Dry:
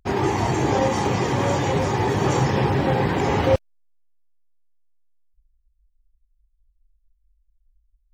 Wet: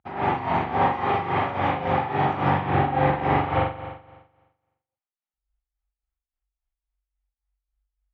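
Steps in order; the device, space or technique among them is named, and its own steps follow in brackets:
combo amplifier with spring reverb and tremolo (spring reverb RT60 1.2 s, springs 42 ms, chirp 20 ms, DRR −7 dB; amplitude tremolo 3.6 Hz, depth 70%; loudspeaker in its box 98–3,500 Hz, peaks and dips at 430 Hz −7 dB, 790 Hz +10 dB, 1,300 Hz +6 dB, 2,100 Hz +3 dB)
level −7.5 dB

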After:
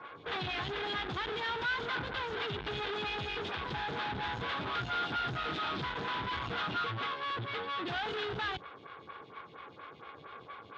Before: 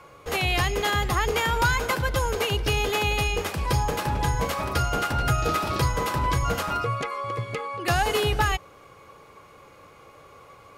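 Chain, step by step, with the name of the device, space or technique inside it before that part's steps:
vibe pedal into a guitar amplifier (phaser with staggered stages 4.3 Hz; tube saturation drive 42 dB, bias 0.75; loudspeaker in its box 96–3,900 Hz, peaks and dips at 560 Hz −8 dB, 1,500 Hz +6 dB, 3,500 Hz +9 dB)
level +7 dB

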